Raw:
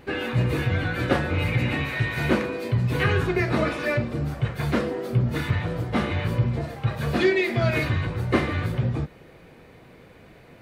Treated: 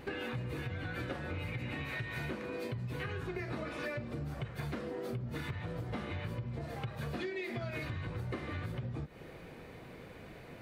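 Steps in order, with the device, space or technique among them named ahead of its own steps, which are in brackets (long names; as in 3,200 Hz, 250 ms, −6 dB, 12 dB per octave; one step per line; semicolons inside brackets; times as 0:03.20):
serial compression, peaks first (downward compressor, threshold −32 dBFS, peak gain reduction 16 dB; downward compressor 2 to 1, threshold −37 dBFS, peak gain reduction 5 dB)
level −1 dB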